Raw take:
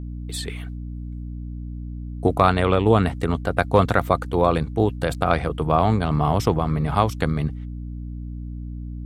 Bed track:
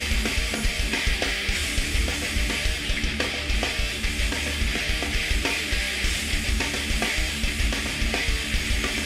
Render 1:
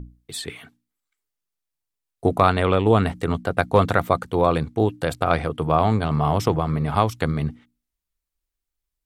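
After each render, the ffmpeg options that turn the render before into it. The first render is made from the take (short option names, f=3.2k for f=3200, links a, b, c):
-af "bandreject=f=60:t=h:w=6,bandreject=f=120:t=h:w=6,bandreject=f=180:t=h:w=6,bandreject=f=240:t=h:w=6,bandreject=f=300:t=h:w=6"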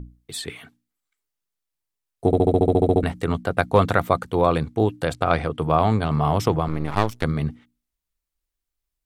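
-filter_complex "[0:a]asettb=1/sr,asplit=3[a][b][c];[a]atrim=end=5.074[d];[b]atrim=start=5.07:end=5.59,asetpts=PTS-STARTPTS,afade=t=in:d=0.004:c=qsin,afade=t=out:st=0.516:d=0.004:c=qsin,lowpass=9.3k[e];[c]atrim=start=5.586[f];[d][e]acrossfade=d=0.004:c1=hsin:c2=qsin[g];[g][f]acrossfade=d=0.004:c1=qsin:c2=hsin,asettb=1/sr,asplit=3[h][i][j];[h]atrim=end=6.684[k];[i]atrim=start=6.68:end=7.24,asetpts=PTS-STARTPTS,afade=t=in:d=0.004:c=qsin,afade=t=out:st=0.556:d=0.004:c=qsin,aeval=exprs='max(val(0),0)':c=same[l];[j]atrim=start=7.236[m];[k][l]acrossfade=d=0.004:c1=hsin:c2=qsin[n];[n][m]acrossfade=d=0.004:c1=qsin:c2=hsin,asplit=12[o][p][q][r][s][t][u][v][w][x][y][z];[o]atrim=end=2.332[aa];[p]atrim=start=2.258:end=2.332[ab];[q]atrim=start=2.258:end=2.332[ac];[r]atrim=start=2.258:end=2.332[ad];[s]atrim=start=2.258:end=2.332[ae];[t]atrim=start=2.258:end=2.332[af];[u]atrim=start=2.258:end=2.332[ag];[v]atrim=start=2.258:end=2.332[ah];[w]atrim=start=2.258:end=2.332[ai];[x]atrim=start=2.258:end=2.332[aj];[y]atrim=start=2.258:end=2.332[ak];[z]atrim=start=3.028[al];[aa][ab]acrossfade=d=0.004:c1=hsin:c2=hsin[am];[am][ac]acrossfade=d=0.004:c1=hsin:c2=hsin[an];[an][ad]acrossfade=d=0.004:c1=hsin:c2=hsin[ao];[ao][ae]acrossfade=d=0.004:c1=hsin:c2=hsin[ap];[ap][af]acrossfade=d=0.004:c1=hsin:c2=hsin[aq];[aq][ag]acrossfade=d=0.004:c1=hsin:c2=hsin[ar];[ar][ah]acrossfade=d=0.004:c1=hsin:c2=hsin[as];[as][ai]acrossfade=d=0.004:c1=hsin:c2=hsin[at];[at][aj]acrossfade=d=0.004:c1=hsin:c2=hsin[au];[au][ak]acrossfade=d=0.004:c1=hsin:c2=hsin[av];[av][al]acrossfade=d=0.004:c1=hsin:c2=hsin"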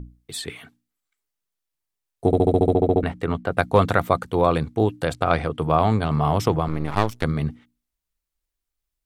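-filter_complex "[0:a]asettb=1/sr,asplit=3[a][b][c];[a]atrim=end=2.744[d];[b]atrim=start=2.74:end=3.52,asetpts=PTS-STARTPTS,afade=t=in:d=0.004:c=qsin,afade=t=out:st=0.776:d=0.004:c=qsin,bass=f=250:g=-2,treble=f=4k:g=-10[e];[c]atrim=start=3.516[f];[d][e]acrossfade=d=0.004:c1=hsin:c2=qsin[g];[g][f]acrossfade=d=0.004:c1=qsin:c2=hsin"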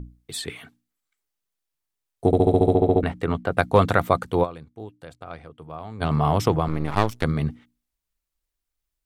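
-filter_complex "[0:a]asettb=1/sr,asplit=3[a][b][c];[a]atrim=end=2.354[d];[b]atrim=start=2.35:end=2.97,asetpts=PTS-STARTPTS,afade=t=in:d=0.004:c=qsin,afade=t=out:st=0.616:d=0.004:c=qsin,asplit=2[e][f];[f]adelay=40,volume=-14dB[g];[e][g]amix=inputs=2:normalize=0,atrim=end_sample=27342[h];[c]atrim=start=2.966[i];[d][h]acrossfade=d=0.004:c1=hsin:c2=qsin[j];[j][i]acrossfade=d=0.004:c1=qsin:c2=hsin,asplit=3[k][l][m];[k]atrim=end=4.59,asetpts=PTS-STARTPTS,afade=t=out:st=4.43:d=0.16:c=exp:silence=0.125893[n];[l]atrim=start=4.59:end=5.86,asetpts=PTS-STARTPTS,volume=-18dB[o];[m]atrim=start=5.86,asetpts=PTS-STARTPTS,afade=t=in:d=0.16:c=exp:silence=0.125893[p];[n][o][p]concat=n=3:v=0:a=1"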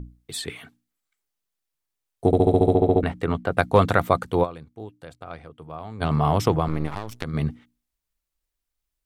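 -filter_complex "[0:a]asplit=3[a][b][c];[a]afade=t=out:st=6.87:d=0.02[d];[b]acompressor=threshold=-25dB:ratio=12:attack=3.2:release=140:knee=1:detection=peak,afade=t=in:st=6.87:d=0.02,afade=t=out:st=7.33:d=0.02[e];[c]afade=t=in:st=7.33:d=0.02[f];[d][e][f]amix=inputs=3:normalize=0"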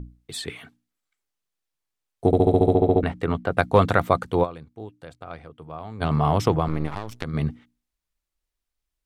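-af "highshelf=f=10k:g=-7"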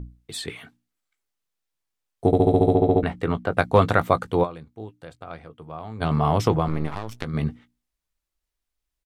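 -filter_complex "[0:a]asplit=2[a][b];[b]adelay=18,volume=-13dB[c];[a][c]amix=inputs=2:normalize=0"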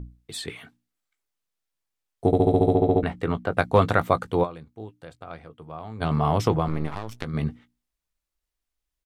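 -af "volume=-1.5dB"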